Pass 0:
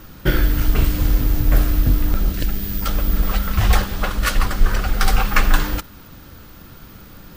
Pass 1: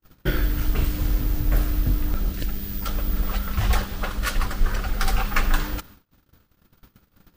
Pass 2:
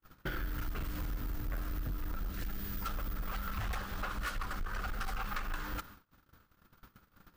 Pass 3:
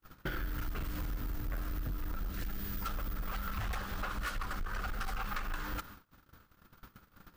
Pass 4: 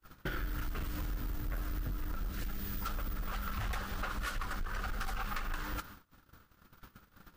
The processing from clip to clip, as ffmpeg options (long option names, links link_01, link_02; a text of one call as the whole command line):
ffmpeg -i in.wav -af "agate=range=-40dB:threshold=-37dB:ratio=16:detection=peak,volume=-6dB" out.wav
ffmpeg -i in.wav -af "equalizer=frequency=1300:width=1.2:gain=8.5,acompressor=threshold=-23dB:ratio=6,asoftclip=type=tanh:threshold=-24.5dB,volume=-6.5dB" out.wav
ffmpeg -i in.wav -af "acompressor=threshold=-43dB:ratio=1.5,volume=3.5dB" out.wav
ffmpeg -i in.wav -ar 44100 -c:a libvorbis -b:a 48k out.ogg